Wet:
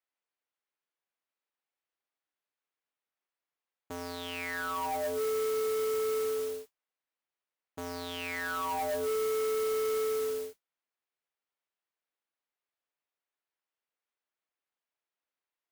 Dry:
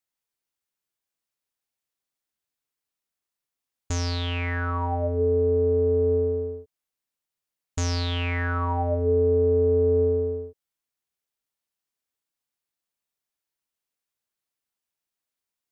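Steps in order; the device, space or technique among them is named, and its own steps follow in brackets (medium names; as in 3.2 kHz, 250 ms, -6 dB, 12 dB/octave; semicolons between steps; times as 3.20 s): carbon microphone (band-pass 360–2700 Hz; saturation -29 dBFS, distortion -10 dB; modulation noise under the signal 13 dB)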